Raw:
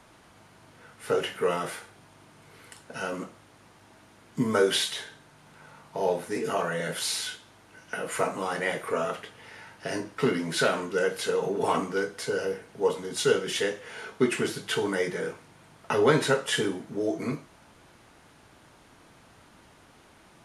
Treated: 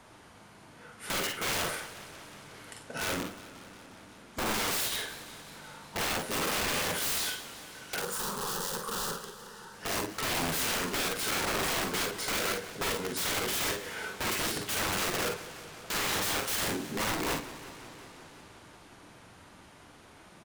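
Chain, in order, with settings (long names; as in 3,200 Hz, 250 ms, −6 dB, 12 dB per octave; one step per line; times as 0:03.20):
brickwall limiter −18.5 dBFS, peak gain reduction 10 dB
wrap-around overflow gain 27 dB
0:07.99–0:09.74: phaser with its sweep stopped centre 440 Hz, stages 8
on a send: ambience of single reflections 44 ms −7.5 dB, 54 ms −8 dB
on the sum: feedback echo with a swinging delay time 180 ms, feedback 78%, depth 142 cents, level −16 dB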